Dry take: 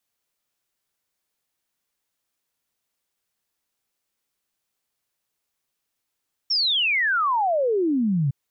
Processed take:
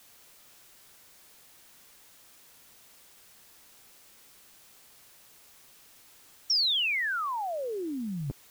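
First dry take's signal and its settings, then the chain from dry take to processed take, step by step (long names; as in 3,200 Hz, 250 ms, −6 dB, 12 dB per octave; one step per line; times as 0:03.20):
exponential sine sweep 5,600 Hz → 130 Hz 1.81 s −18.5 dBFS
every bin compressed towards the loudest bin 4 to 1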